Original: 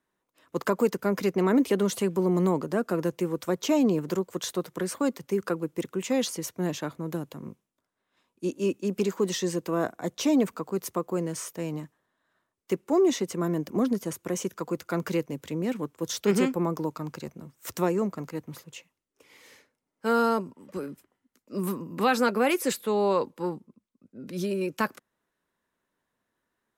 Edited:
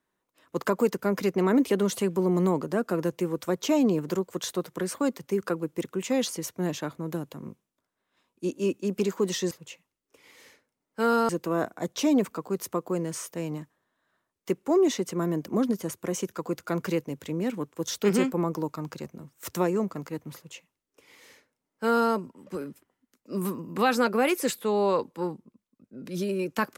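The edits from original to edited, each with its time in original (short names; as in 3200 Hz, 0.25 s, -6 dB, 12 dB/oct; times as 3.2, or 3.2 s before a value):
18.57–20.35 copy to 9.51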